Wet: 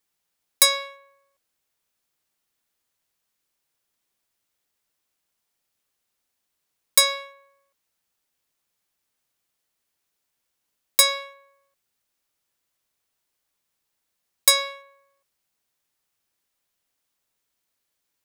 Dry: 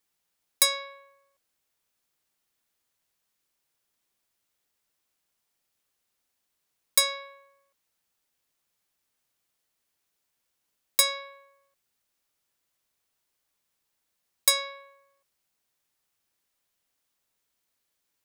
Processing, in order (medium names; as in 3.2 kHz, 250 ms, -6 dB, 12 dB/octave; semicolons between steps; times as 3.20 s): waveshaping leveller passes 1; trim +2.5 dB